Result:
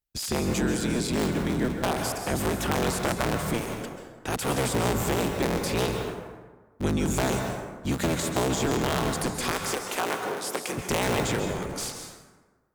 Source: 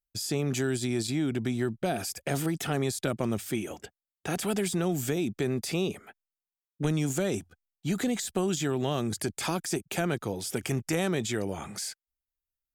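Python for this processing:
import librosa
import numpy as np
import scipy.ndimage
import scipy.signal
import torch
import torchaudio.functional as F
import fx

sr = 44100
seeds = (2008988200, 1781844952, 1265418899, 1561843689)

y = fx.cycle_switch(x, sr, every=3, mode='inverted')
y = fx.highpass(y, sr, hz=350.0, slope=12, at=(9.51, 10.78))
y = fx.rev_plate(y, sr, seeds[0], rt60_s=1.4, hf_ratio=0.5, predelay_ms=120, drr_db=3.5)
y = y * 10.0 ** (1.5 / 20.0)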